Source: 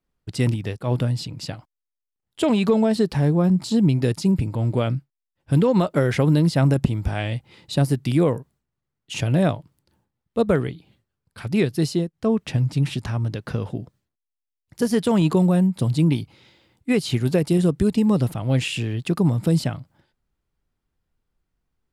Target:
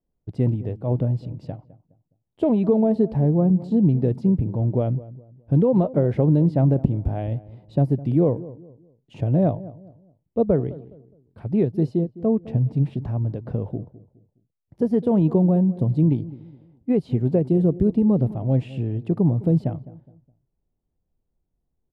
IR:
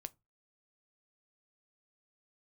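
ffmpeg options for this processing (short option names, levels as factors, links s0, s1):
-filter_complex "[0:a]firequalizer=gain_entry='entry(660,0);entry(1300,-16);entry(6400,-30)':delay=0.05:min_phase=1,asplit=2[s0][s1];[s1]adelay=208,lowpass=f=910:p=1,volume=0.141,asplit=2[s2][s3];[s3]adelay=208,lowpass=f=910:p=1,volume=0.35,asplit=2[s4][s5];[s5]adelay=208,lowpass=f=910:p=1,volume=0.35[s6];[s2][s4][s6]amix=inputs=3:normalize=0[s7];[s0][s7]amix=inputs=2:normalize=0"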